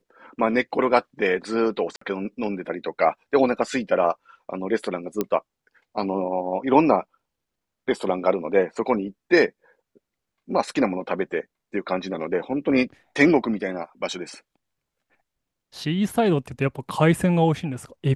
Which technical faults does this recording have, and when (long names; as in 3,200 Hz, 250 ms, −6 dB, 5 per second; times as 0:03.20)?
0:01.96–0:02.01: drop-out 54 ms
0:05.21: click −10 dBFS